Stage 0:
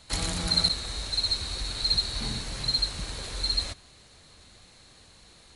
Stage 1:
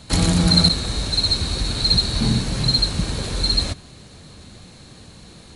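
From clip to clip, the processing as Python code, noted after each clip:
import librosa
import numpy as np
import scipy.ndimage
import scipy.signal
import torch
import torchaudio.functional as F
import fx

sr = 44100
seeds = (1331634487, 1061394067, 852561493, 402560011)

y = fx.peak_eq(x, sr, hz=170.0, db=11.5, octaves=2.6)
y = fx.notch(y, sr, hz=2000.0, q=27.0)
y = F.gain(torch.from_numpy(y), 7.0).numpy()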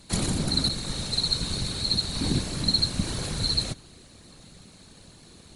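y = fx.high_shelf(x, sr, hz=9100.0, db=9.5)
y = fx.rider(y, sr, range_db=4, speed_s=0.5)
y = fx.whisperise(y, sr, seeds[0])
y = F.gain(torch.from_numpy(y), -8.0).numpy()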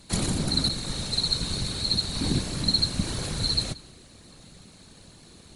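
y = x + 10.0 ** (-22.0 / 20.0) * np.pad(x, (int(181 * sr / 1000.0), 0))[:len(x)]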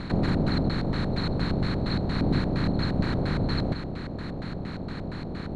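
y = fx.bin_compress(x, sr, power=0.4)
y = fx.filter_lfo_lowpass(y, sr, shape='square', hz=4.3, low_hz=680.0, high_hz=1700.0, q=1.8)
y = F.gain(torch.from_numpy(y), -1.5).numpy()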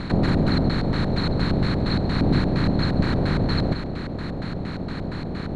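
y = x + 10.0 ** (-16.0 / 20.0) * np.pad(x, (int(138 * sr / 1000.0), 0))[:len(x)]
y = F.gain(torch.from_numpy(y), 4.5).numpy()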